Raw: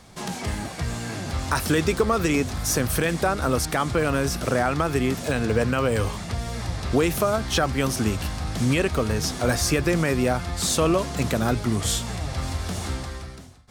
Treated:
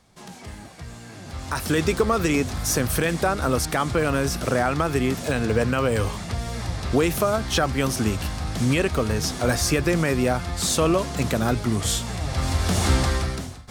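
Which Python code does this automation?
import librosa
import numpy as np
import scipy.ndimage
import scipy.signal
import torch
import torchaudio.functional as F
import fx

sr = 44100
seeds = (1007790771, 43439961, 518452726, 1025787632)

y = fx.gain(x, sr, db=fx.line((1.12, -10.0), (1.82, 0.5), (12.13, 0.5), (13.06, 11.5)))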